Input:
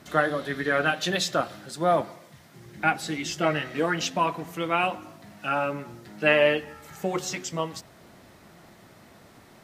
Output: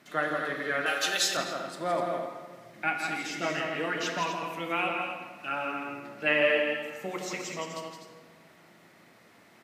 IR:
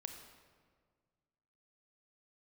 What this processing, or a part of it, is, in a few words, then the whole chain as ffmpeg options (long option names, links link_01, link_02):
stadium PA: -filter_complex "[0:a]highpass=170,equalizer=frequency=2200:width_type=o:width=1:gain=6,aecho=1:1:166.2|250.7:0.501|0.355[link_01];[1:a]atrim=start_sample=2205[link_02];[link_01][link_02]afir=irnorm=-1:irlink=0,asettb=1/sr,asplit=3[link_03][link_04][link_05];[link_03]atrim=end=0.864[link_06];[link_04]atrim=start=0.86:end=1.37,asetpts=PTS-STARTPTS,afade=type=in:duration=0.004:curve=qsin,afade=type=out:start_time=0.506:duration=0.004:curve=qsin,bass=frequency=250:gain=-14,treble=frequency=4000:gain=12[link_07];[link_05]atrim=start=1.366[link_08];[link_06][link_07]acrossfade=duration=0.004:curve1=hsin:curve2=qsin[link_09];[link_09][link_08]acrossfade=duration=0.004:curve1=qsin:curve2=hsin,volume=-4dB"